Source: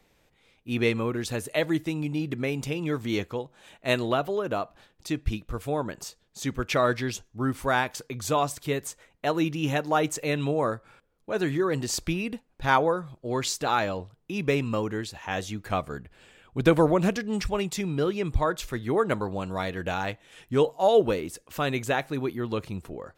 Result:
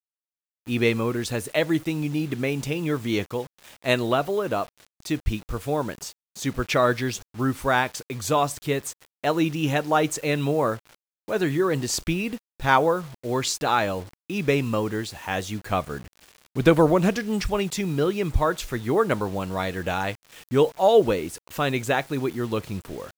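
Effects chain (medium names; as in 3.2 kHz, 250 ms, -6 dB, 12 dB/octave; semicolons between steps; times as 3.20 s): bit crusher 8-bit; trim +3 dB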